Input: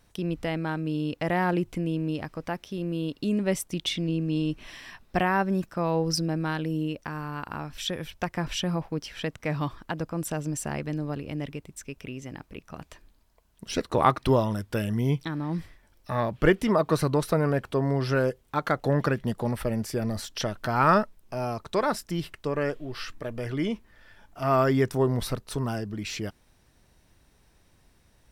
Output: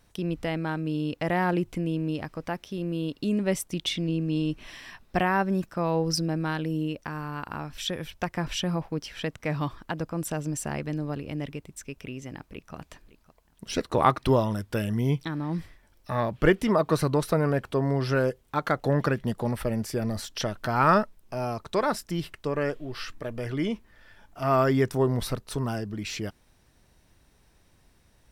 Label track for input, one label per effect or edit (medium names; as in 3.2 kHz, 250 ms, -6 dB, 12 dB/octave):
12.350000	12.750000	echo throw 560 ms, feedback 30%, level -17 dB